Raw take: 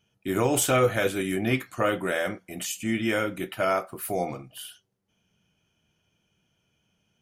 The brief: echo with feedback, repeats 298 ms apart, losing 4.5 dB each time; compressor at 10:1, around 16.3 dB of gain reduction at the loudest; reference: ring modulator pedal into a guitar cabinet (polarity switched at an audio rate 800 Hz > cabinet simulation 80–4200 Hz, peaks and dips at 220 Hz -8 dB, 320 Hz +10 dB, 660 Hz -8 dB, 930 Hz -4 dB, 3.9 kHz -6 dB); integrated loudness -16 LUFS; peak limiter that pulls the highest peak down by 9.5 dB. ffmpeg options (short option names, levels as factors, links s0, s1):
-af "acompressor=threshold=0.02:ratio=10,alimiter=level_in=2.11:limit=0.0631:level=0:latency=1,volume=0.473,aecho=1:1:298|596|894|1192|1490|1788|2086|2384|2682:0.596|0.357|0.214|0.129|0.0772|0.0463|0.0278|0.0167|0.01,aeval=exprs='val(0)*sgn(sin(2*PI*800*n/s))':c=same,highpass=80,equalizer=f=220:t=q:w=4:g=-8,equalizer=f=320:t=q:w=4:g=10,equalizer=f=660:t=q:w=4:g=-8,equalizer=f=930:t=q:w=4:g=-4,equalizer=f=3900:t=q:w=4:g=-6,lowpass=f=4200:w=0.5412,lowpass=f=4200:w=1.3066,volume=17.8"